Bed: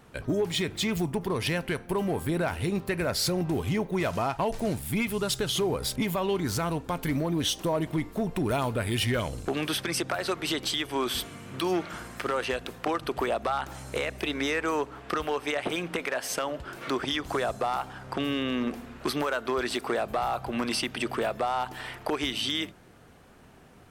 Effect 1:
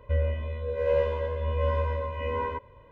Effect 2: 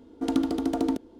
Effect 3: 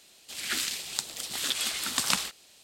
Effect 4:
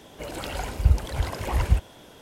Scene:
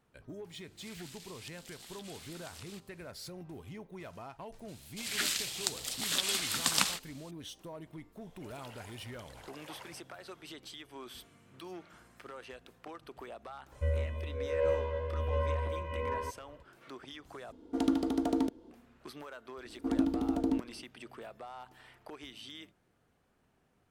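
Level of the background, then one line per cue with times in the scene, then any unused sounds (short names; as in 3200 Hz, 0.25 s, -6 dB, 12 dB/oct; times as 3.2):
bed -18.5 dB
0.49 add 3 -14.5 dB + compressor, threshold -33 dBFS
4.68 add 3 -2 dB
8.21 add 4 -17 dB + HPF 500 Hz
13.72 add 1 -5.5 dB
17.52 replace with 2 -4 dB
19.63 add 2 -10.5 dB + low shelf 310 Hz +11.5 dB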